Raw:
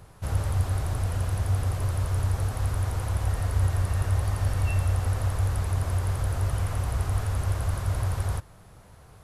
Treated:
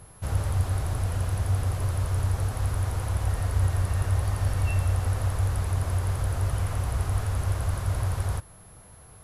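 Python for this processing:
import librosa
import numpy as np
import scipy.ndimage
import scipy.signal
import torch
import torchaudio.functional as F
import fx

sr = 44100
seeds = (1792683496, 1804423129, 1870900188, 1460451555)

y = x + 10.0 ** (-53.0 / 20.0) * np.sin(2.0 * np.pi * 11000.0 * np.arange(len(x)) / sr)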